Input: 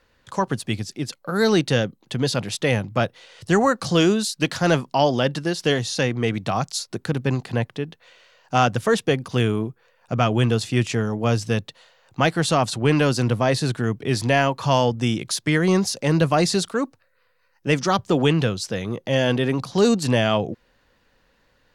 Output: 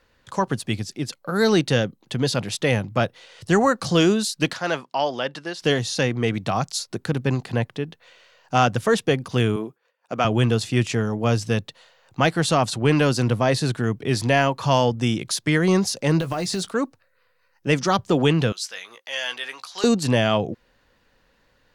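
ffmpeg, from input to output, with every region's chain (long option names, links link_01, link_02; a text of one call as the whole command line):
ffmpeg -i in.wav -filter_complex "[0:a]asettb=1/sr,asplit=3[link_01][link_02][link_03];[link_01]atrim=end=4.534[link_04];[link_02]atrim=start=4.53:end=5.62,asetpts=PTS-STARTPTS,afade=type=in:duration=0.004:curve=qsin,afade=type=out:start_time=1.086:duration=0.004:curve=qsin,highpass=frequency=810:poles=1,aemphasis=mode=reproduction:type=50kf[link_05];[link_03]atrim=start=5.616[link_06];[link_04][link_05]acrossfade=duration=0.004:curve1=hsin:curve2=qsin[link_07];[link_07][link_06]acrossfade=duration=0.004:curve1=qsin:curve2=hsin,asettb=1/sr,asplit=3[link_08][link_09][link_10];[link_08]atrim=end=9.564[link_11];[link_09]atrim=start=9.56:end=10.25,asetpts=PTS-STARTPTS,afade=type=in:duration=0.004:curve=qsin,afade=type=out:start_time=0.686:duration=0.004:curve=qsin,highpass=280,agate=range=-33dB:threshold=-54dB:ratio=3:release=100:detection=peak[link_12];[link_10]atrim=start=10.246[link_13];[link_11][link_12]acrossfade=duration=0.004:curve1=hsin:curve2=qsin[link_14];[link_14][link_13]acrossfade=duration=0.004:curve1=qsin:curve2=hsin,asettb=1/sr,asplit=3[link_15][link_16][link_17];[link_15]atrim=end=16.204[link_18];[link_16]atrim=start=16.2:end=16.71,asetpts=PTS-STARTPTS,afade=type=in:duration=0.004:curve=qsin,afade=type=out:start_time=0.506:duration=0.004:curve=qsin,acompressor=threshold=-22dB:ratio=6:attack=3.2:release=140:knee=1:detection=peak,acrusher=bits=7:mode=log:mix=0:aa=0.000001,asplit=2[link_19][link_20];[link_20]adelay=16,volume=-11dB[link_21];[link_19][link_21]amix=inputs=2:normalize=0,atrim=end_sample=22491[link_22];[link_17]atrim=start=16.706[link_23];[link_18][link_22]acrossfade=duration=0.004:curve1=hsin:curve2=qsin[link_24];[link_24][link_23]acrossfade=duration=0.004:curve1=qsin:curve2=hsin,asettb=1/sr,asplit=3[link_25][link_26][link_27];[link_25]atrim=end=18.524[link_28];[link_26]atrim=start=18.52:end=19.84,asetpts=PTS-STARTPTS,afade=type=in:duration=0.004:curve=qsin,afade=type=out:start_time=1.316:duration=0.004:curve=qsin,highpass=1400,asplit=2[link_29][link_30];[link_30]adelay=17,volume=-10.5dB[link_31];[link_29][link_31]amix=inputs=2:normalize=0,atrim=end_sample=58212[link_32];[link_27]atrim=start=19.836[link_33];[link_28][link_32]acrossfade=duration=0.004:curve1=hsin:curve2=qsin[link_34];[link_34][link_33]acrossfade=duration=0.004:curve1=qsin:curve2=hsin" out.wav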